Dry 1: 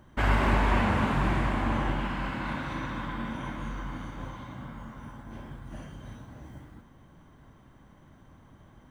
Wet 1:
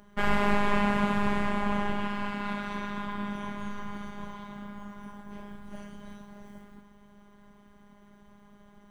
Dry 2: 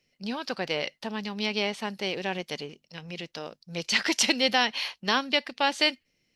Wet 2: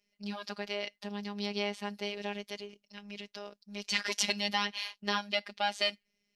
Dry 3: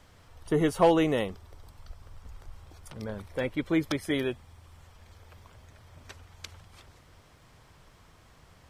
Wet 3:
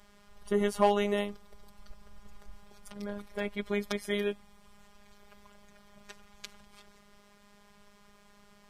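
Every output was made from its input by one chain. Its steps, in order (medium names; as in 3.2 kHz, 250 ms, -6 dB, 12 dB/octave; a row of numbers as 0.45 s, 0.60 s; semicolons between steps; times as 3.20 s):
robot voice 204 Hz; peak normalisation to -9 dBFS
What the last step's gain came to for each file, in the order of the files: +2.0 dB, -4.5 dB, +0.5 dB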